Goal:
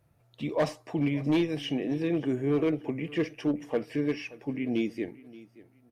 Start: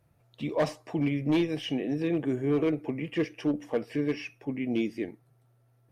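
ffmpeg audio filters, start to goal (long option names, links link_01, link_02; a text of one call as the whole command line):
ffmpeg -i in.wav -af "aecho=1:1:577|1154:0.1|0.027" out.wav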